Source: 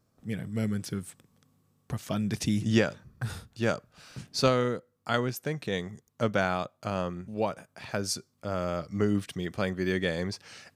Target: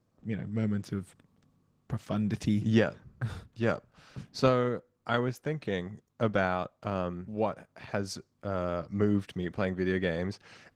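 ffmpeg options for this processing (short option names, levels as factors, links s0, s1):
-af "lowpass=f=2500:p=1" -ar 48000 -c:a libopus -b:a 16k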